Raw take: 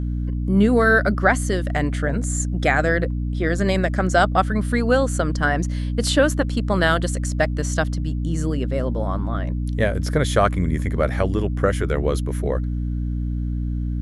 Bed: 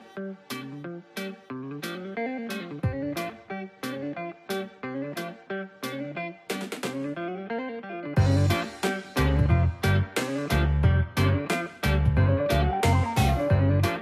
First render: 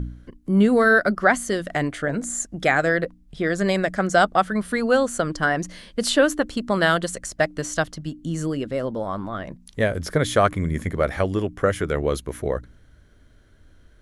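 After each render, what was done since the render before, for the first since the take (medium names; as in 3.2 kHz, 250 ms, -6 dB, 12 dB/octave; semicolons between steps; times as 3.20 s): de-hum 60 Hz, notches 5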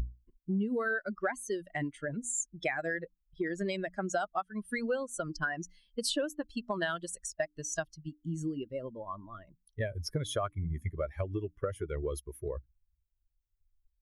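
expander on every frequency bin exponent 2; compression 6:1, threshold -30 dBFS, peak gain reduction 15 dB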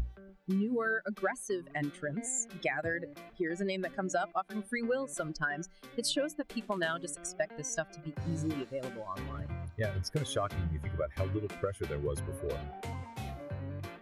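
add bed -18.5 dB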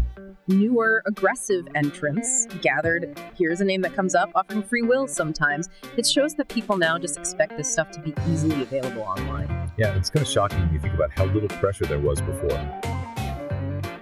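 trim +12 dB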